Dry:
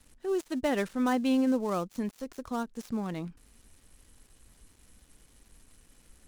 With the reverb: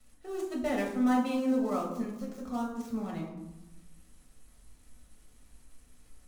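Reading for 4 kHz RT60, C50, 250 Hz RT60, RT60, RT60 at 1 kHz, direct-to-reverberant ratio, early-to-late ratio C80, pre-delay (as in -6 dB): 0.50 s, 4.5 dB, 1.4 s, 1.0 s, 1.0 s, -2.5 dB, 7.0 dB, 5 ms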